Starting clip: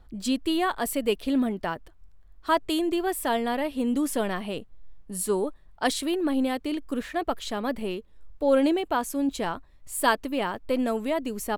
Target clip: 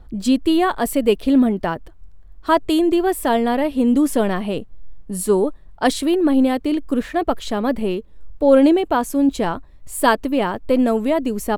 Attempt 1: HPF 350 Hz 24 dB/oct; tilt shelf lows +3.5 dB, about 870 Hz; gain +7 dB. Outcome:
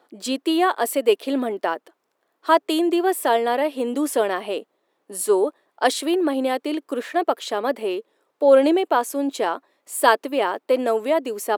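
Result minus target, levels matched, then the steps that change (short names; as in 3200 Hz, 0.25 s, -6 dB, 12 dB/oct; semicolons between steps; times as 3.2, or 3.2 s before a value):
250 Hz band -4.5 dB
remove: HPF 350 Hz 24 dB/oct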